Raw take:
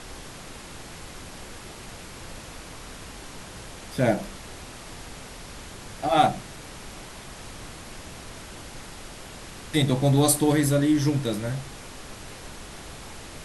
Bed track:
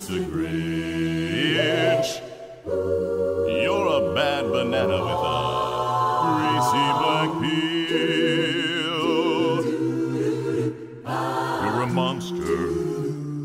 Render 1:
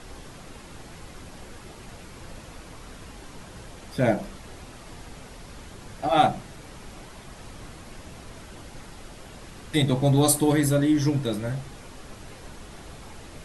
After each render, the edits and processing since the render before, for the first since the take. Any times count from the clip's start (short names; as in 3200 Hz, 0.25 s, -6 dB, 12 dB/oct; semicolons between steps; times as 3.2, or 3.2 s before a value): denoiser 6 dB, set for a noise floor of -42 dBFS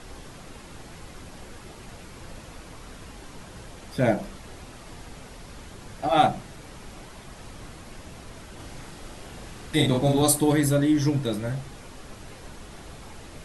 8.55–10.22 doubler 41 ms -2.5 dB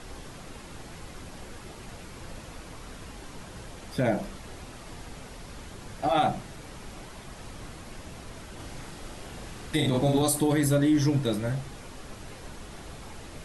limiter -15 dBFS, peak gain reduction 7 dB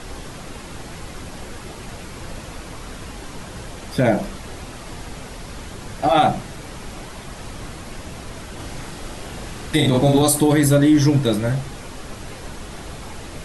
gain +8.5 dB